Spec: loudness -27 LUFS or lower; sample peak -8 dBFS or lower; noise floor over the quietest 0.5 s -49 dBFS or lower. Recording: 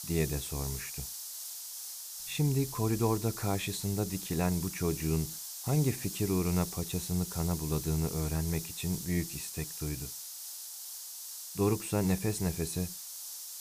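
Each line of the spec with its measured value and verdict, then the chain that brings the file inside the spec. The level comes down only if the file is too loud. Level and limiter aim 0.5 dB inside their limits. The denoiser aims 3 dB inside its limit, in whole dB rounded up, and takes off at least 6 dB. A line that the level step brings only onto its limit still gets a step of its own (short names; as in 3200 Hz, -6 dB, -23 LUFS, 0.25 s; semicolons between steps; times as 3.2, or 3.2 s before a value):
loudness -33.0 LUFS: OK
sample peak -15.5 dBFS: OK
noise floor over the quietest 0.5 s -44 dBFS: fail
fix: denoiser 8 dB, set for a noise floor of -44 dBFS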